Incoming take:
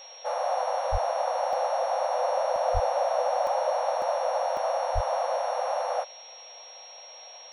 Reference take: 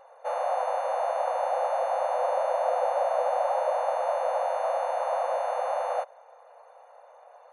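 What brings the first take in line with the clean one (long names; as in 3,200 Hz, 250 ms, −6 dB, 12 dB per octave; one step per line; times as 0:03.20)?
notch filter 5,600 Hz, Q 30
0:00.91–0:01.03: high-pass filter 140 Hz 24 dB per octave
0:02.73–0:02.85: high-pass filter 140 Hz 24 dB per octave
0:04.94–0:05.06: high-pass filter 140 Hz 24 dB per octave
repair the gap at 0:01.53/0:02.56/0:03.47/0:04.02/0:04.57, 1.4 ms
noise reduction from a noise print 6 dB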